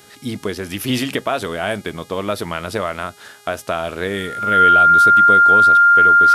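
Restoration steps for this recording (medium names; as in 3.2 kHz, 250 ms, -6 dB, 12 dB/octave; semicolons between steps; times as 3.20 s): de-hum 411.2 Hz, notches 31; band-stop 1.4 kHz, Q 30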